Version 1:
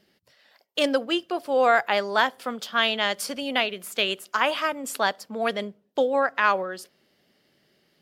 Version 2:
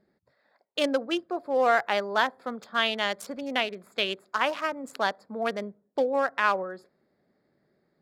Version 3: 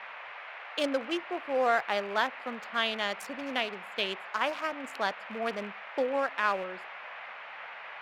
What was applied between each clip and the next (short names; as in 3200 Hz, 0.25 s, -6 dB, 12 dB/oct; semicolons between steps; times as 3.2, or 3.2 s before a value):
Wiener smoothing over 15 samples; gain -2.5 dB
rattling part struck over -43 dBFS, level -33 dBFS; band noise 580–2500 Hz -40 dBFS; gain -4 dB